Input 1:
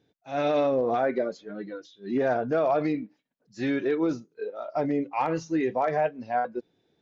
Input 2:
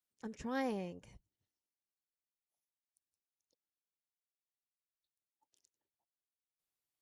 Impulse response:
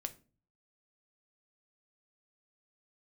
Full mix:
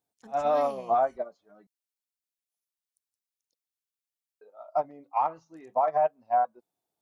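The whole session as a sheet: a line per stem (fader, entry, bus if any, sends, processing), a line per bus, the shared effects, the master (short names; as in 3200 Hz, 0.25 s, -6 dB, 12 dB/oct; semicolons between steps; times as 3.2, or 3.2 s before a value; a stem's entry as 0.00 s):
-0.5 dB, 0.00 s, muted 1.67–4.41, no send, band shelf 890 Hz +14 dB 1.3 oct; upward expander 2.5:1, over -23 dBFS
-7.0 dB, 0.00 s, no send, high shelf 2200 Hz +10 dB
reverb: off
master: limiter -16 dBFS, peak gain reduction 11 dB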